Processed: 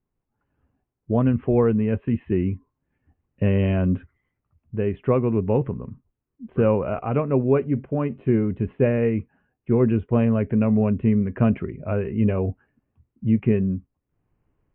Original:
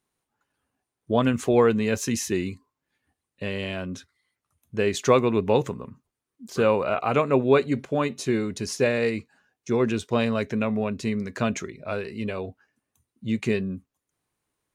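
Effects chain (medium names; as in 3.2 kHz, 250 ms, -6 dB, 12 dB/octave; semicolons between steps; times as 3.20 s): steep low-pass 3 kHz 72 dB/octave; tilt EQ -4 dB/octave; level rider; trim -7.5 dB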